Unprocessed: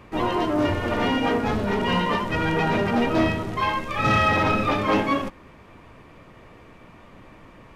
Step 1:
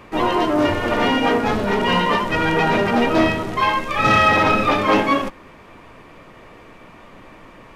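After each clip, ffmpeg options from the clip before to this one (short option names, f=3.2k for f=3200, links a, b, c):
-af "equalizer=f=77:t=o:w=2.8:g=-7,volume=6dB"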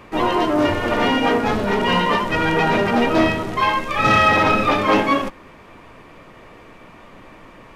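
-af anull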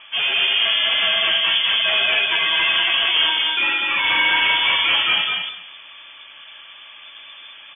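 -filter_complex "[0:a]asoftclip=type=hard:threshold=-16.5dB,asplit=2[a][b];[b]aecho=0:1:203|406|609:0.708|0.135|0.0256[c];[a][c]amix=inputs=2:normalize=0,lowpass=f=3k:t=q:w=0.5098,lowpass=f=3k:t=q:w=0.6013,lowpass=f=3k:t=q:w=0.9,lowpass=f=3k:t=q:w=2.563,afreqshift=-3500"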